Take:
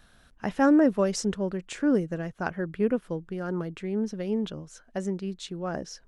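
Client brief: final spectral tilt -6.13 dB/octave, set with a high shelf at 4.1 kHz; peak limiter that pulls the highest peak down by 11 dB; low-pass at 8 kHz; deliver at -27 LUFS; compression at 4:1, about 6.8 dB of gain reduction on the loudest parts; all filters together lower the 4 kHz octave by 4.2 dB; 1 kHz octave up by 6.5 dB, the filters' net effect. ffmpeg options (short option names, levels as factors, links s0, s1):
-af "lowpass=8000,equalizer=f=1000:t=o:g=9,equalizer=f=4000:t=o:g=-8.5,highshelf=f=4100:g=3,acompressor=threshold=0.0708:ratio=4,volume=1.88,alimiter=limit=0.158:level=0:latency=1"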